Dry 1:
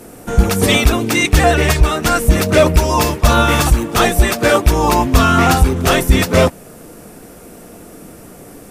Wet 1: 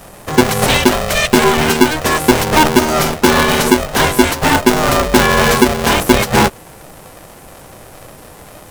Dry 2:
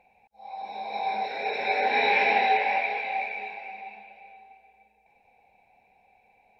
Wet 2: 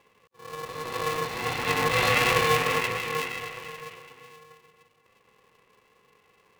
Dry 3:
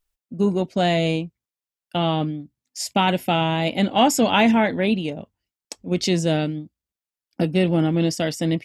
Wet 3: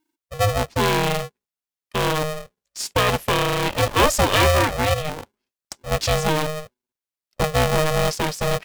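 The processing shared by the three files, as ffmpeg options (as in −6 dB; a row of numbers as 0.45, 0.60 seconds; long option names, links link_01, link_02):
-af "aeval=exprs='val(0)*sgn(sin(2*PI*310*n/s))':channel_layout=same"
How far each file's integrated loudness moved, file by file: +1.0, 0.0, 0.0 LU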